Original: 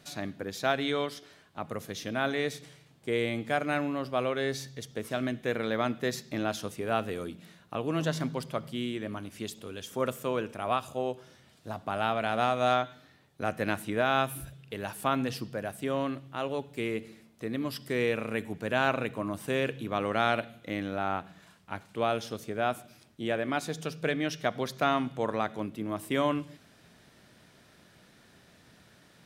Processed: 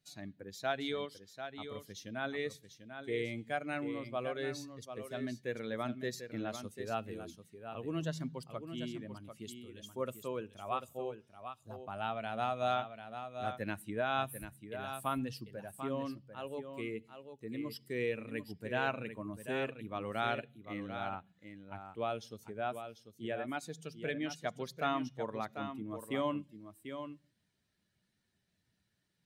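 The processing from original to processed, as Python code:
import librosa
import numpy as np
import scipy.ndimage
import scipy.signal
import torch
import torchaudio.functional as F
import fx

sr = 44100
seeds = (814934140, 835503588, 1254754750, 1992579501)

p1 = fx.bin_expand(x, sr, power=1.5)
p2 = p1 + fx.echo_single(p1, sr, ms=743, db=-9.0, dry=0)
y = F.gain(torch.from_numpy(p2), -5.0).numpy()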